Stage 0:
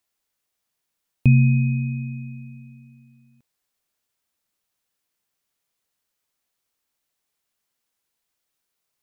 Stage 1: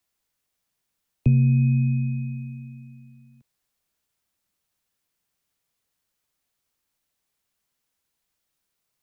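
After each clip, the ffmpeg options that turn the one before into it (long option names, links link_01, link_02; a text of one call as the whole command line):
ffmpeg -i in.wav -filter_complex "[0:a]acrossover=split=210|410|750[link_01][link_02][link_03][link_04];[link_01]acontrast=32[link_05];[link_04]alimiter=level_in=11.5dB:limit=-24dB:level=0:latency=1,volume=-11.5dB[link_06];[link_05][link_02][link_03][link_06]amix=inputs=4:normalize=0,acrossover=split=160|2200[link_07][link_08][link_09];[link_07]acompressor=threshold=-21dB:ratio=4[link_10];[link_08]acompressor=threshold=-22dB:ratio=4[link_11];[link_09]acompressor=threshold=-53dB:ratio=4[link_12];[link_10][link_11][link_12]amix=inputs=3:normalize=0" out.wav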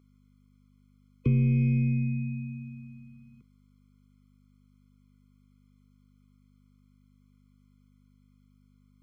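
ffmpeg -i in.wav -filter_complex "[0:a]aeval=exprs='val(0)+0.00178*(sin(2*PI*50*n/s)+sin(2*PI*2*50*n/s)/2+sin(2*PI*3*50*n/s)/3+sin(2*PI*4*50*n/s)/4+sin(2*PI*5*50*n/s)/5)':channel_layout=same,asplit=2[link_01][link_02];[link_02]highpass=frequency=720:poles=1,volume=23dB,asoftclip=type=tanh:threshold=-7.5dB[link_03];[link_01][link_03]amix=inputs=2:normalize=0,lowpass=frequency=1300:poles=1,volume=-6dB,afftfilt=real='re*eq(mod(floor(b*sr/1024/500),2),0)':imag='im*eq(mod(floor(b*sr/1024/500),2),0)':win_size=1024:overlap=0.75,volume=-6.5dB" out.wav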